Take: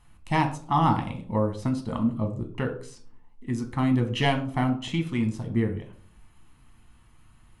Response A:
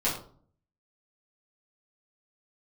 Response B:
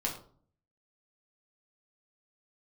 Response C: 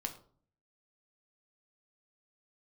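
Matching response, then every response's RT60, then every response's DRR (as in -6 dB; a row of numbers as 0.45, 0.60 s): C; 0.50, 0.50, 0.50 s; -9.0, -2.0, 4.0 dB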